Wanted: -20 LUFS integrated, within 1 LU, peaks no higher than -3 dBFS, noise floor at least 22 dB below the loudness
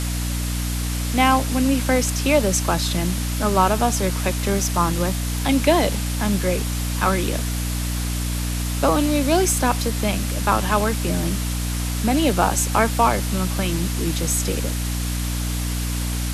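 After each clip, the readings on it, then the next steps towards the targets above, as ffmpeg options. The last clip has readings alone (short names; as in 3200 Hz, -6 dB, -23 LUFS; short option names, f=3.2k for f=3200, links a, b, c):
hum 60 Hz; harmonics up to 300 Hz; hum level -22 dBFS; noise floor -24 dBFS; noise floor target -43 dBFS; loudness -21.0 LUFS; peak -2.5 dBFS; loudness target -20.0 LUFS
-> -af "bandreject=f=60:t=h:w=6,bandreject=f=120:t=h:w=6,bandreject=f=180:t=h:w=6,bandreject=f=240:t=h:w=6,bandreject=f=300:t=h:w=6"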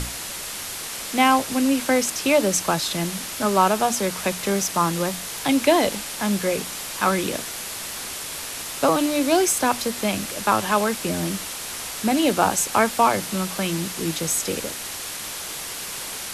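hum none; noise floor -33 dBFS; noise floor target -45 dBFS
-> -af "afftdn=nr=12:nf=-33"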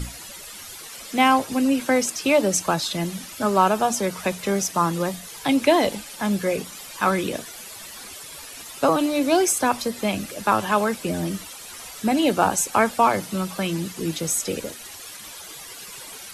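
noise floor -40 dBFS; noise floor target -45 dBFS
-> -af "afftdn=nr=6:nf=-40"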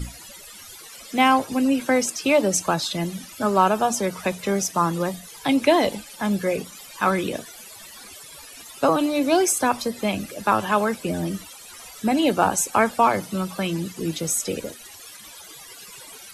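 noise floor -43 dBFS; noise floor target -45 dBFS
-> -af "afftdn=nr=6:nf=-43"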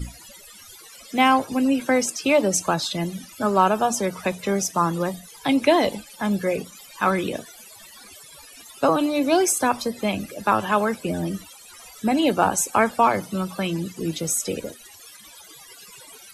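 noise floor -46 dBFS; loudness -22.5 LUFS; peak -4.0 dBFS; loudness target -20.0 LUFS
-> -af "volume=2.5dB,alimiter=limit=-3dB:level=0:latency=1"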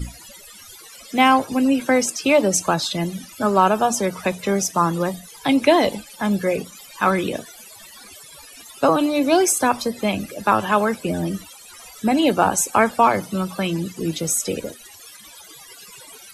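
loudness -20.0 LUFS; peak -3.0 dBFS; noise floor -44 dBFS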